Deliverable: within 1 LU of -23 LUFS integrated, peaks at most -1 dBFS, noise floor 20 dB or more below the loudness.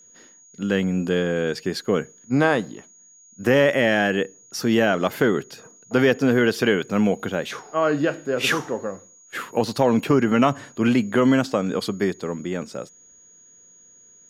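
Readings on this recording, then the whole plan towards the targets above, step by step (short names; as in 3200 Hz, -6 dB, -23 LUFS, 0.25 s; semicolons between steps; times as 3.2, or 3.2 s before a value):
steady tone 6700 Hz; tone level -49 dBFS; loudness -22.0 LUFS; peak -3.5 dBFS; loudness target -23.0 LUFS
-> notch 6700 Hz, Q 30; gain -1 dB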